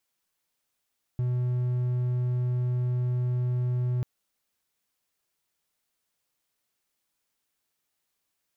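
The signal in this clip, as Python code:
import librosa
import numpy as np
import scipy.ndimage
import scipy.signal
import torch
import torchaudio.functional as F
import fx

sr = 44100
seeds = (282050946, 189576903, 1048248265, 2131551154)

y = 10.0 ** (-22.0 / 20.0) * (1.0 - 4.0 * np.abs(np.mod(124.0 * (np.arange(round(2.84 * sr)) / sr) + 0.25, 1.0) - 0.5))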